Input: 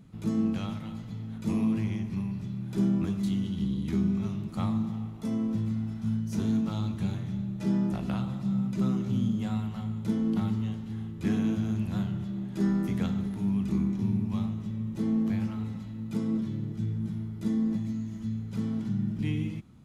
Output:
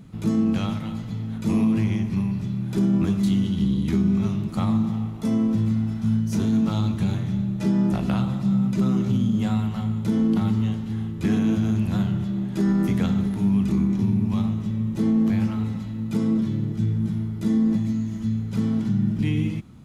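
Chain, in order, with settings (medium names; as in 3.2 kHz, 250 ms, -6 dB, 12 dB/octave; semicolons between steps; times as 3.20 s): peak limiter -21.5 dBFS, peak gain reduction 5 dB; trim +8 dB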